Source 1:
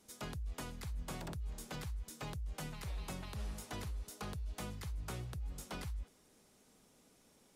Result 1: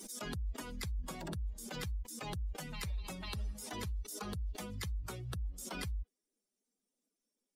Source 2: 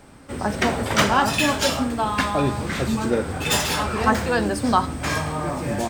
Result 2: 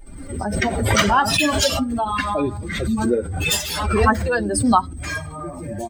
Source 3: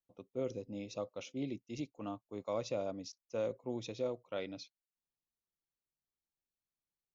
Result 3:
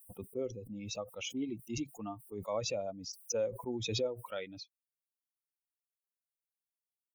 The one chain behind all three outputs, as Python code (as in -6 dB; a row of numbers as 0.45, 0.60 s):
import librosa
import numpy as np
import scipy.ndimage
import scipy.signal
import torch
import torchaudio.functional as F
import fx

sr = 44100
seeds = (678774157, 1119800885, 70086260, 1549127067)

y = fx.bin_expand(x, sr, power=2.0)
y = fx.peak_eq(y, sr, hz=140.0, db=-15.0, octaves=0.2)
y = fx.pre_swell(y, sr, db_per_s=38.0)
y = y * librosa.db_to_amplitude(4.5)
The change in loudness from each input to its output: +2.5, +2.0, +2.5 LU